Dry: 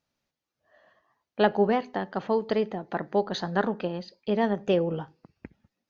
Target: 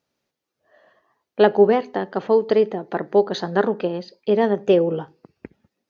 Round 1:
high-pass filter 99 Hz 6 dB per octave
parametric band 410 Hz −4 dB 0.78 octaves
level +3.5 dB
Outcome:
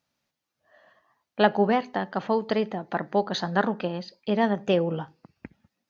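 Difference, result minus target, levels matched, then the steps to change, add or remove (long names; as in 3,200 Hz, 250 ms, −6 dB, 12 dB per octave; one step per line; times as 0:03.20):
500 Hz band −2.5 dB
change: parametric band 410 Hz +7 dB 0.78 octaves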